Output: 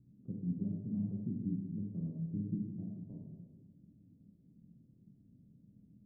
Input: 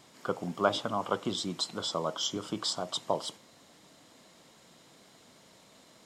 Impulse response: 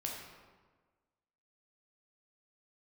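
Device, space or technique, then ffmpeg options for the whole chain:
club heard from the street: -filter_complex "[0:a]alimiter=limit=0.1:level=0:latency=1:release=330,lowpass=f=210:w=0.5412,lowpass=f=210:w=1.3066[s0];[1:a]atrim=start_sample=2205[s1];[s0][s1]afir=irnorm=-1:irlink=0,volume=1.88"

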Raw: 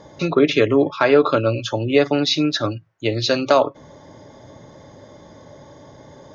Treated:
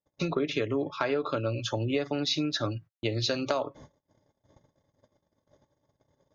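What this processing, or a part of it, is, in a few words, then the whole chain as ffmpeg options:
ASMR close-microphone chain: -af "agate=range=0.00562:threshold=0.0112:ratio=16:detection=peak,lowshelf=f=100:g=7.5,acompressor=threshold=0.112:ratio=5,highshelf=f=6200:g=4.5,volume=0.473"

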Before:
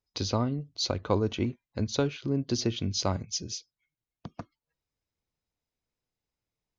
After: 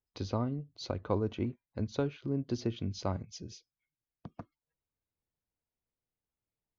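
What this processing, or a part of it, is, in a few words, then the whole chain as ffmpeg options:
through cloth: -af "highshelf=f=3400:g=-15,volume=0.596"

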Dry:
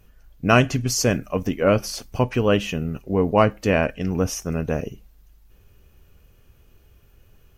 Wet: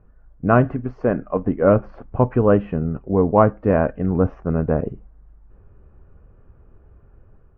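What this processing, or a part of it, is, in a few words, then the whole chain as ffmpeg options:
action camera in a waterproof case: -filter_complex "[0:a]asettb=1/sr,asplit=3[s0][s1][s2];[s0]atrim=end=0.734[s3];[s1]atrim=start=0.73:end=1.43,asetpts=PTS-STARTPTS,afade=t=in:d=0.004:c=qsin,afade=t=out:st=0.696:d=0.004:c=qsin,equalizer=f=89:w=0.83:g=-10[s4];[s2]atrim=start=1.426[s5];[s3][s4]acrossfade=d=0.004:c1=hsin:c2=qsin[s6];[s6][s5]acrossfade=d=0.004:c1=qsin:c2=hsin,lowpass=f=1400:w=0.5412,lowpass=f=1400:w=1.3066,dynaudnorm=f=170:g=5:m=1.58,volume=1.12" -ar 32000 -c:a aac -b:a 64k

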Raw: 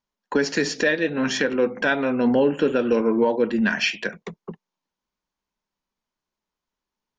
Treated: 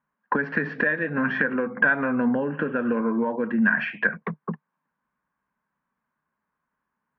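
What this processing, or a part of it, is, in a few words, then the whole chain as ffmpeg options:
bass amplifier: -af "acompressor=threshold=0.0447:ratio=6,highpass=65,equalizer=f=150:t=q:w=4:g=7,equalizer=f=230:t=q:w=4:g=5,equalizer=f=370:t=q:w=4:g=-5,equalizer=f=1100:t=q:w=4:g=8,equalizer=f=1600:t=q:w=4:g=10,lowpass=f=2200:w=0.5412,lowpass=f=2200:w=1.3066,volume=1.5"

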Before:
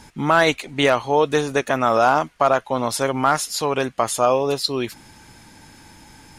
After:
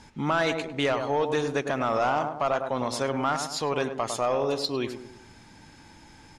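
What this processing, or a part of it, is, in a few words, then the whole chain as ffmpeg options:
soft clipper into limiter: -filter_complex "[0:a]lowpass=7100,asplit=2[s0][s1];[s1]adelay=103,lowpass=f=1100:p=1,volume=0.398,asplit=2[s2][s3];[s3]adelay=103,lowpass=f=1100:p=1,volume=0.48,asplit=2[s4][s5];[s5]adelay=103,lowpass=f=1100:p=1,volume=0.48,asplit=2[s6][s7];[s7]adelay=103,lowpass=f=1100:p=1,volume=0.48,asplit=2[s8][s9];[s9]adelay=103,lowpass=f=1100:p=1,volume=0.48,asplit=2[s10][s11];[s11]adelay=103,lowpass=f=1100:p=1,volume=0.48[s12];[s0][s2][s4][s6][s8][s10][s12]amix=inputs=7:normalize=0,asoftclip=type=tanh:threshold=0.376,alimiter=limit=0.251:level=0:latency=1:release=69,volume=0.562"

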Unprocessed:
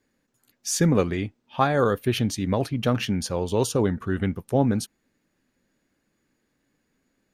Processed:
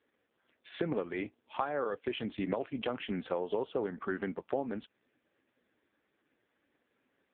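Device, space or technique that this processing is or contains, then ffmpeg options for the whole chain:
voicemail: -af "highpass=350,lowpass=3100,acompressor=threshold=0.0224:ratio=10,volume=1.58" -ar 8000 -c:a libopencore_amrnb -b:a 5150

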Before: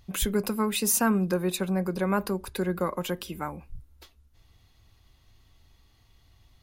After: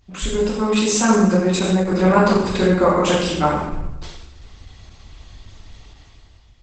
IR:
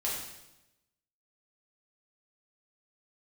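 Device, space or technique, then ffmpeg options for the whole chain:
speakerphone in a meeting room: -filter_complex "[1:a]atrim=start_sample=2205[s0];[0:a][s0]afir=irnorm=-1:irlink=0,dynaudnorm=f=190:g=7:m=4.73" -ar 48000 -c:a libopus -b:a 12k

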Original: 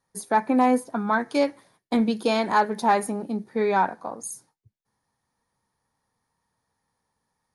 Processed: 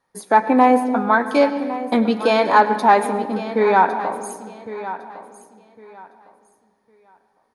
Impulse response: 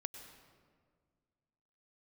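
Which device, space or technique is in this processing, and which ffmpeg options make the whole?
filtered reverb send: -filter_complex "[0:a]aecho=1:1:1107|2214|3321:0.2|0.0459|0.0106,asplit=2[s0][s1];[s1]highpass=220,lowpass=4200[s2];[1:a]atrim=start_sample=2205[s3];[s2][s3]afir=irnorm=-1:irlink=0,volume=1.88[s4];[s0][s4]amix=inputs=2:normalize=0"

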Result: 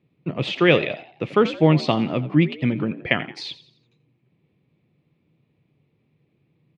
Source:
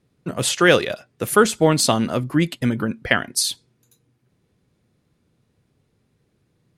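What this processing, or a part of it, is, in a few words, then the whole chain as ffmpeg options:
frequency-shifting delay pedal into a guitar cabinet: -filter_complex "[0:a]asplit=5[s0][s1][s2][s3][s4];[s1]adelay=86,afreqshift=67,volume=0.158[s5];[s2]adelay=172,afreqshift=134,volume=0.07[s6];[s3]adelay=258,afreqshift=201,volume=0.0305[s7];[s4]adelay=344,afreqshift=268,volume=0.0135[s8];[s0][s5][s6][s7][s8]amix=inputs=5:normalize=0,highpass=88,equalizer=f=150:t=q:w=4:g=8,equalizer=f=320:t=q:w=4:g=4,equalizer=f=1500:t=q:w=4:g=-10,equalizer=f=2400:t=q:w=4:g=8,lowpass=f=3600:w=0.5412,lowpass=f=3600:w=1.3066,volume=0.75"

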